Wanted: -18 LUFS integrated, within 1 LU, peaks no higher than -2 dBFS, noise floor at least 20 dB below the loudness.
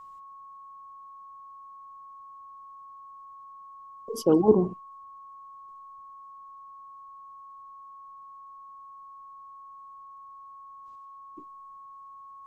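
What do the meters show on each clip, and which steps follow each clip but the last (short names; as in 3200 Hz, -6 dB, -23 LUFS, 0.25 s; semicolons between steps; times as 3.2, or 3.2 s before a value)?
steady tone 1100 Hz; tone level -44 dBFS; loudness -23.5 LUFS; peak -7.0 dBFS; loudness target -18.0 LUFS
-> notch 1100 Hz, Q 30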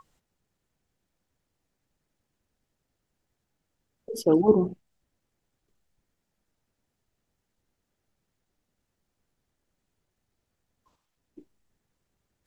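steady tone none; loudness -23.0 LUFS; peak -7.5 dBFS; loudness target -18.0 LUFS
-> gain +5 dB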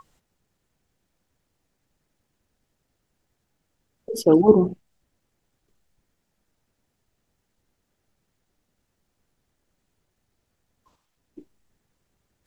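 loudness -18.0 LUFS; peak -2.5 dBFS; noise floor -76 dBFS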